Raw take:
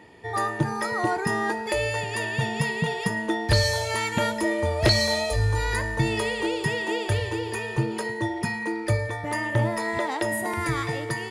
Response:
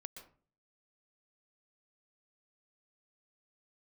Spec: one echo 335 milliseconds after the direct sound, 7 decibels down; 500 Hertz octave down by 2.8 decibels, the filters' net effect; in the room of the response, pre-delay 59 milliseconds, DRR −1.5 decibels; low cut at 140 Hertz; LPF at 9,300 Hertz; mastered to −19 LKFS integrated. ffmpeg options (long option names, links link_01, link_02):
-filter_complex "[0:a]highpass=140,lowpass=9300,equalizer=frequency=500:width_type=o:gain=-3.5,aecho=1:1:335:0.447,asplit=2[link_01][link_02];[1:a]atrim=start_sample=2205,adelay=59[link_03];[link_02][link_03]afir=irnorm=-1:irlink=0,volume=6.5dB[link_04];[link_01][link_04]amix=inputs=2:normalize=0,volume=4dB"